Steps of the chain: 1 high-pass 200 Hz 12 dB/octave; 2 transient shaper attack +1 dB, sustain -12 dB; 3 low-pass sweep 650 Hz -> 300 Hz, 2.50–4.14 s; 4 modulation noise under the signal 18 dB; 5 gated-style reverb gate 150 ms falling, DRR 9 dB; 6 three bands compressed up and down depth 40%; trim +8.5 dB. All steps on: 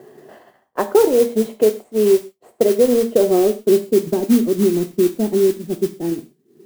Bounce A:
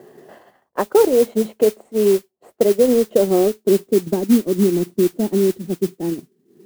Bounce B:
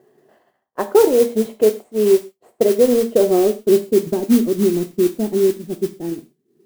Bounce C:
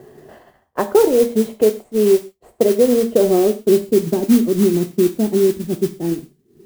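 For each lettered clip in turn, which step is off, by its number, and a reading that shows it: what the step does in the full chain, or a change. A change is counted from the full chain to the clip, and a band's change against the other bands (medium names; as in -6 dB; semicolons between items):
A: 5, 125 Hz band +2.5 dB; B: 6, momentary loudness spread change +2 LU; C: 1, 125 Hz band +3.0 dB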